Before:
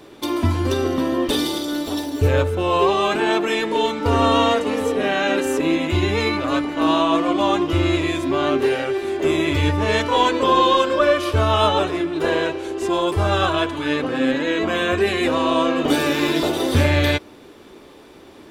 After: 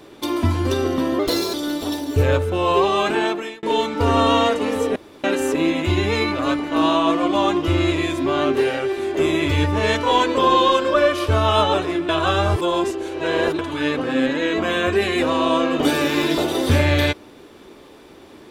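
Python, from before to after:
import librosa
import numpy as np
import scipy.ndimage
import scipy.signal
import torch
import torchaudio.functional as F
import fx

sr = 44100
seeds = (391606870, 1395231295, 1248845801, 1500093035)

y = fx.edit(x, sr, fx.speed_span(start_s=1.19, length_s=0.4, speed=1.15),
    fx.fade_out_span(start_s=3.22, length_s=0.46),
    fx.room_tone_fill(start_s=5.01, length_s=0.28),
    fx.reverse_span(start_s=12.14, length_s=1.5), tone=tone)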